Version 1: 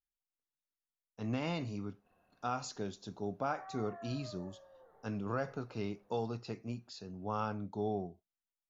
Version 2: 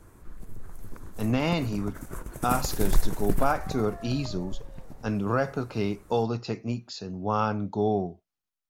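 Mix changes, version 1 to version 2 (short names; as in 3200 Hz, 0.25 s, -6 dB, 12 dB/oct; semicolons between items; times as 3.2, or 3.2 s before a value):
speech +10.5 dB; first sound: unmuted; second sound +4.5 dB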